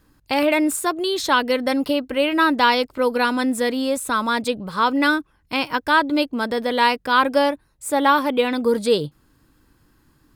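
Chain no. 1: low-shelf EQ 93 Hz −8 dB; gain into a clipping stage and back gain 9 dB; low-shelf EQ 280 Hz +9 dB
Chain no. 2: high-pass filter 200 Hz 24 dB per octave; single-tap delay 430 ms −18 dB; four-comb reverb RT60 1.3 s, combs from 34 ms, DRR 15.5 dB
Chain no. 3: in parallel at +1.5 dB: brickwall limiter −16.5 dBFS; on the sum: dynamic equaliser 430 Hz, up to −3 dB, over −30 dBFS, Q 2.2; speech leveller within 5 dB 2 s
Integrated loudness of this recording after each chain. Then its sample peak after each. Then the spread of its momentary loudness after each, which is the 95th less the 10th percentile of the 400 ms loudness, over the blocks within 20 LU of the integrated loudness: −18.5, −20.0, −16.0 LKFS; −5.0, −2.5, −2.0 dBFS; 5, 7, 6 LU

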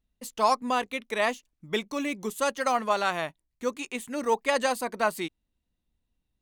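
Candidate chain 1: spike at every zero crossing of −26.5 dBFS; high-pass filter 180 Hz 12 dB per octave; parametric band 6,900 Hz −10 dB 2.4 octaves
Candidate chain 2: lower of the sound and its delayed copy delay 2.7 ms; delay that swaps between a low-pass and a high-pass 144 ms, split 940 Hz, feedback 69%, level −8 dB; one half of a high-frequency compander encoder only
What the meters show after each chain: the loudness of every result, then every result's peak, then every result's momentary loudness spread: −29.5, −30.0 LKFS; −11.5, −13.5 dBFS; 14, 14 LU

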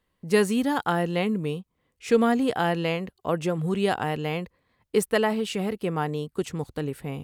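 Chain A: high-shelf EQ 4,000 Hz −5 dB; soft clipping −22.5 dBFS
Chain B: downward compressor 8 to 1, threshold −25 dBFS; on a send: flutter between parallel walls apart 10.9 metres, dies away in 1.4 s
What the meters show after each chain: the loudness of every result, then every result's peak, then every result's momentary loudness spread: −30.0, −28.0 LKFS; −22.5, −13.5 dBFS; 7, 6 LU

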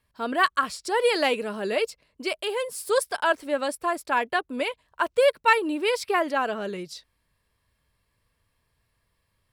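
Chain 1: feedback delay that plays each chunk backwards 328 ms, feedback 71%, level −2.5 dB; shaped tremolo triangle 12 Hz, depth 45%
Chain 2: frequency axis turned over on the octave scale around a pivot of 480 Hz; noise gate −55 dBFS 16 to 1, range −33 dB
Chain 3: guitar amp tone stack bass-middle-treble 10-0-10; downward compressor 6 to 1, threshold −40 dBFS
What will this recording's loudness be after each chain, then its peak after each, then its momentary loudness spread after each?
−24.5, −26.5, −43.5 LKFS; −5.0, −8.0, −26.5 dBFS; 15, 11, 5 LU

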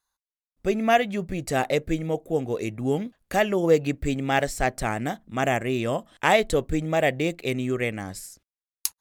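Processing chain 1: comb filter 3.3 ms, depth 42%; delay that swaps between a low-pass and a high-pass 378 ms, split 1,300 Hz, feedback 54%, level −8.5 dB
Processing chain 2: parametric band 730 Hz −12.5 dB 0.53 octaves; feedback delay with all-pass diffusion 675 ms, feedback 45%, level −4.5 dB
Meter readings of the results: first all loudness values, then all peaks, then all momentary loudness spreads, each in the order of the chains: −24.5, −26.0 LKFS; −5.0, −5.5 dBFS; 9, 6 LU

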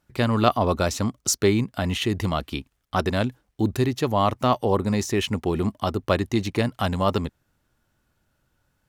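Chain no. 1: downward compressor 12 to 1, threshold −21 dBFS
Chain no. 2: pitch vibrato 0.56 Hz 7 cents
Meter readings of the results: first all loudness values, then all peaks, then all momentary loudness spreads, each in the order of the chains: −27.5, −24.0 LKFS; −9.5, −2.5 dBFS; 4, 7 LU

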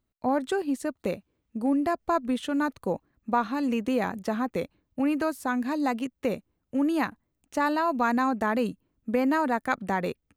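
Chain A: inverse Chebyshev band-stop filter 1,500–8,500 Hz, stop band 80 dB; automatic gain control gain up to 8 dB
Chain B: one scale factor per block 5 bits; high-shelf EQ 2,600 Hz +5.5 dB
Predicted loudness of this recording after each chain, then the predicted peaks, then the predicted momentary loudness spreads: −25.0, −27.5 LKFS; −12.5, −9.5 dBFS; 10, 9 LU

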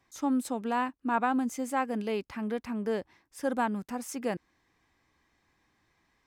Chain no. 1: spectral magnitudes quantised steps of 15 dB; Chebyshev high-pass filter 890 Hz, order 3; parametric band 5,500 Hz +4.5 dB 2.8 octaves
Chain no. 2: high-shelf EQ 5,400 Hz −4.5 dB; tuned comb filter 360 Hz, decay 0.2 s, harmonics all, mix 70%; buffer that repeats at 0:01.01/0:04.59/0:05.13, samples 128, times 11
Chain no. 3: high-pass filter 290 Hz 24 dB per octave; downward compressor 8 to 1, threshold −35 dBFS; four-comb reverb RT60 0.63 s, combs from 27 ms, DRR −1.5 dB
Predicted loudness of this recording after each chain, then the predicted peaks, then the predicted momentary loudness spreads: −37.0, −41.0, −37.0 LKFS; −18.5, −23.0, −22.0 dBFS; 13, 7, 5 LU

